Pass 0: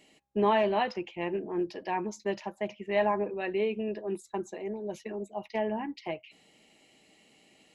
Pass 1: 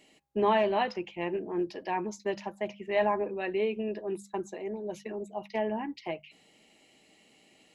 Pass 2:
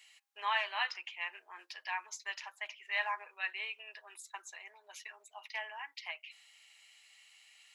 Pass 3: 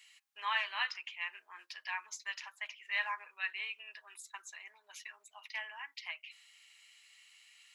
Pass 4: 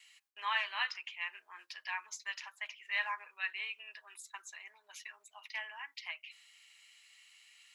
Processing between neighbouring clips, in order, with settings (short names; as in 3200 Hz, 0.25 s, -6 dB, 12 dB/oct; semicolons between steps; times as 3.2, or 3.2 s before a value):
notches 50/100/150/200 Hz
HPF 1200 Hz 24 dB/oct; gain +2.5 dB
band shelf 510 Hz -8 dB
gate with hold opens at -58 dBFS